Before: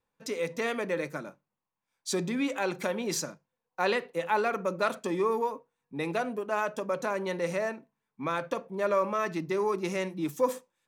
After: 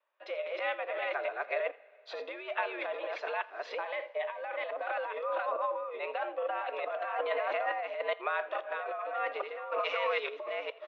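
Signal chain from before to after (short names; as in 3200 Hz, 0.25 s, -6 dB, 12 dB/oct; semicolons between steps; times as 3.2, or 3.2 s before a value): reverse delay 0.428 s, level 0 dB; 0.59–1.11 expander -26 dBFS; 9.79–10.29 tilt +3.5 dB/oct; negative-ratio compressor -31 dBFS, ratio -1; random-step tremolo; mistuned SSB +100 Hz 400–3300 Hz; 3.83–4.87 notch comb 1400 Hz; echo 83 ms -22 dB; two-slope reverb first 0.23 s, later 2.8 s, from -18 dB, DRR 15 dB; gain +1.5 dB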